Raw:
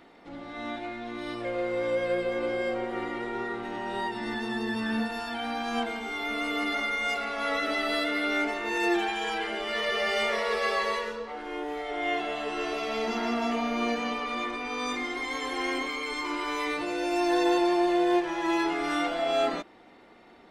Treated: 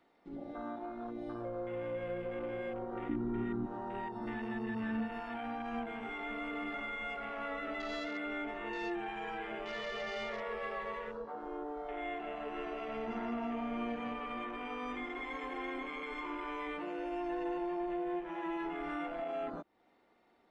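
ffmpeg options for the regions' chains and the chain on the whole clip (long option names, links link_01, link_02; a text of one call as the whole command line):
ffmpeg -i in.wav -filter_complex "[0:a]asettb=1/sr,asplit=3[link_01][link_02][link_03];[link_01]atrim=end=3.094[link_04];[link_02]atrim=start=3.09:end=3.66,asetpts=PTS-STARTPTS,afade=type=in:duration=0.004:curve=qsin,afade=type=out:start_time=0.566:duration=0.004:curve=qsin,lowpass=9100,lowshelf=frequency=380:width_type=q:width=3:gain=8.5[link_05];[link_03]atrim=start=3.656[link_06];[link_04][link_05]acrossfade=duration=0.004:curve1=hsin:curve2=qsin[link_07];[link_07][link_06]acrossfade=duration=0.004:curve1=qsin:curve2=hsin,afwtdn=0.0178,equalizer=frequency=780:width_type=o:width=2.1:gain=3,acrossover=split=180[link_08][link_09];[link_09]acompressor=threshold=-41dB:ratio=3[link_10];[link_08][link_10]amix=inputs=2:normalize=0,volume=-1dB" out.wav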